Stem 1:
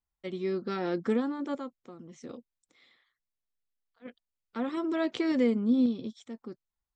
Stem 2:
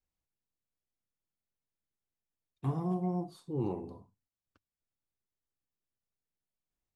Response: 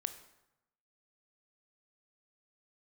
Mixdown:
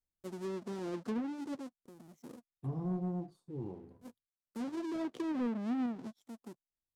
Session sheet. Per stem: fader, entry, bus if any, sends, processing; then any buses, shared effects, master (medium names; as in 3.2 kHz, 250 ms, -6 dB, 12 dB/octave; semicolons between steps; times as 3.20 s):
-12.5 dB, 0.00 s, no send, square wave that keeps the level; high-pass 140 Hz 12 dB/octave; gate with hold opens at -49 dBFS
-1.0 dB, 0.00 s, no send, auto duck -11 dB, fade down 1.10 s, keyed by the first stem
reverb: none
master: low-pass that closes with the level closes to 2 kHz, closed at -31 dBFS; peaking EQ 2.4 kHz -12 dB 2.8 oct; waveshaping leveller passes 1